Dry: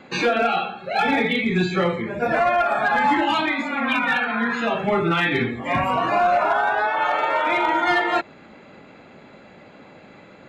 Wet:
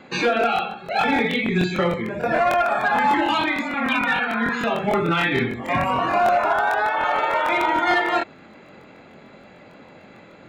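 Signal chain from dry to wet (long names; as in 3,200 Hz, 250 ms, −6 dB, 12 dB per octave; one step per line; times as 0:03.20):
regular buffer underruns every 0.15 s, samples 1,024, repeat, from 0:00.39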